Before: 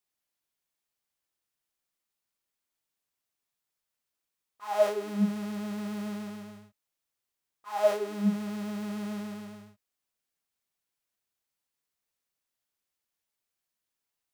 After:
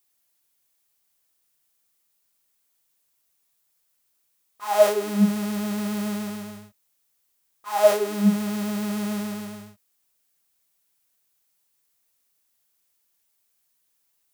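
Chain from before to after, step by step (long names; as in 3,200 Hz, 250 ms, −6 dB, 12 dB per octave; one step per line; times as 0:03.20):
high-shelf EQ 6,800 Hz +10.5 dB
level +7.5 dB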